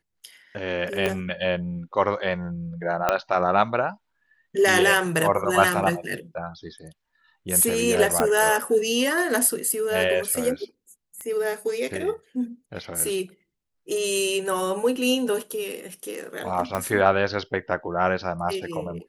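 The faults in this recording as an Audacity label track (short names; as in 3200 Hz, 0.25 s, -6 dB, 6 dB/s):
1.060000	1.060000	pop -11 dBFS
3.090000	3.090000	pop -6 dBFS
8.200000	8.200000	pop -7 dBFS
11.210000	11.210000	pop -22 dBFS
16.750000	16.750000	pop -13 dBFS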